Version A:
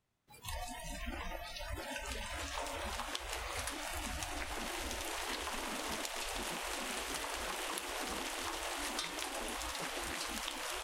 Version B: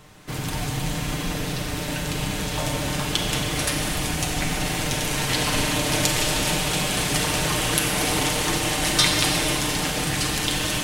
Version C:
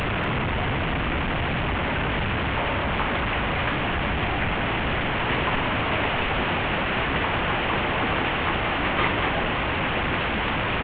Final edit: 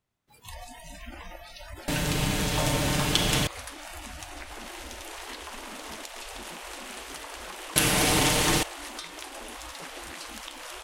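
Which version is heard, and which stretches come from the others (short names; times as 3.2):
A
1.88–3.47 from B
7.76–8.63 from B
not used: C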